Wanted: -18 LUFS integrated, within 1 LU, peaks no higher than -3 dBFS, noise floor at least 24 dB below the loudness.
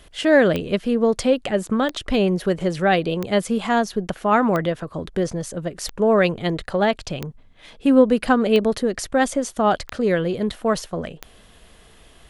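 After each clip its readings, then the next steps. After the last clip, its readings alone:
clicks found 9; loudness -21.0 LUFS; peak level -2.5 dBFS; loudness target -18.0 LUFS
-> de-click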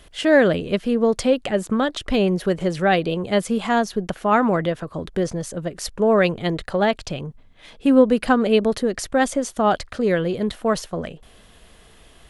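clicks found 0; loudness -21.0 LUFS; peak level -2.5 dBFS; loudness target -18.0 LUFS
-> trim +3 dB; peak limiter -3 dBFS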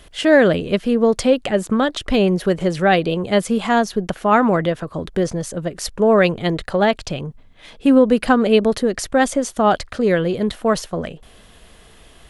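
loudness -18.0 LUFS; peak level -3.0 dBFS; noise floor -47 dBFS

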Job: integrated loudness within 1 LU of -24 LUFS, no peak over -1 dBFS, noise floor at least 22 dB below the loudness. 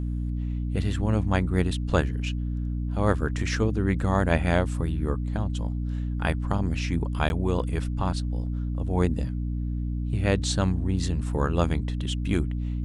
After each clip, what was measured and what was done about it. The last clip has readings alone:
dropouts 1; longest dropout 11 ms; hum 60 Hz; highest harmonic 300 Hz; hum level -26 dBFS; loudness -27.0 LUFS; peak level -6.0 dBFS; loudness target -24.0 LUFS
-> interpolate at 7.29 s, 11 ms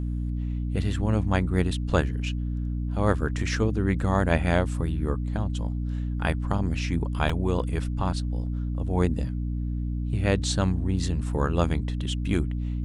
dropouts 0; hum 60 Hz; highest harmonic 300 Hz; hum level -26 dBFS
-> hum notches 60/120/180/240/300 Hz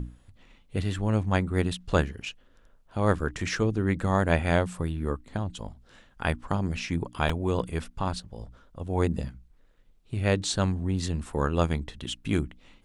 hum not found; loudness -28.5 LUFS; peak level -7.0 dBFS; loudness target -24.0 LUFS
-> trim +4.5 dB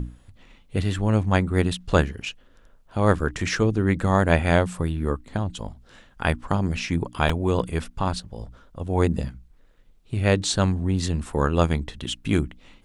loudness -24.0 LUFS; peak level -2.5 dBFS; noise floor -54 dBFS

